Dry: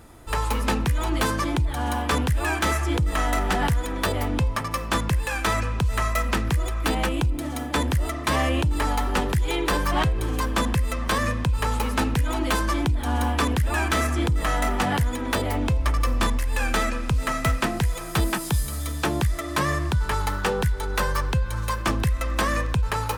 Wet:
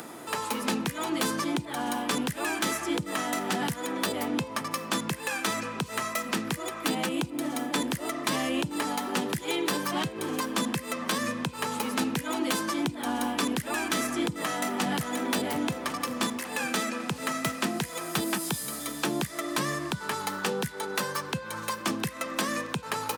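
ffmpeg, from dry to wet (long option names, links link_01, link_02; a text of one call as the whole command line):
ffmpeg -i in.wav -filter_complex "[0:a]asplit=2[link_01][link_02];[link_02]afade=type=in:start_time=14.45:duration=0.01,afade=type=out:start_time=15.3:duration=0.01,aecho=0:1:550|1100|1650|2200|2750|3300|3850:0.316228|0.189737|0.113842|0.0683052|0.0409831|0.0245899|0.0147539[link_03];[link_01][link_03]amix=inputs=2:normalize=0,acrossover=split=310|3000[link_04][link_05][link_06];[link_05]acompressor=threshold=-30dB:ratio=6[link_07];[link_04][link_07][link_06]amix=inputs=3:normalize=0,highpass=frequency=180:width=0.5412,highpass=frequency=180:width=1.3066,acompressor=mode=upward:threshold=-34dB:ratio=2.5" out.wav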